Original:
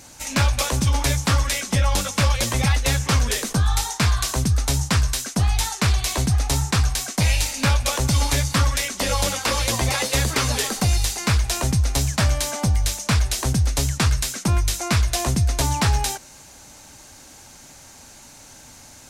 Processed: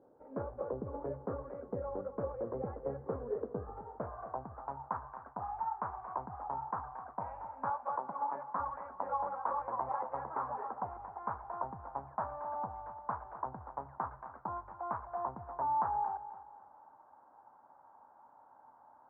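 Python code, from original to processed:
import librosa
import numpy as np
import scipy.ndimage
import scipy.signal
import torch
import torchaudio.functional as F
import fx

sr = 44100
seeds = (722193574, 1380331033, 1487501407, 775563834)

y = scipy.signal.sosfilt(scipy.signal.butter(6, 1400.0, 'lowpass', fs=sr, output='sos'), x)
y = fx.filter_sweep_bandpass(y, sr, from_hz=450.0, to_hz=910.0, start_s=3.82, end_s=4.53, q=3.8)
y = fx.brickwall_highpass(y, sr, low_hz=150.0, at=(7.7, 8.6))
y = fx.echo_feedback(y, sr, ms=259, feedback_pct=35, wet_db=-14)
y = F.gain(torch.from_numpy(y), -2.5).numpy()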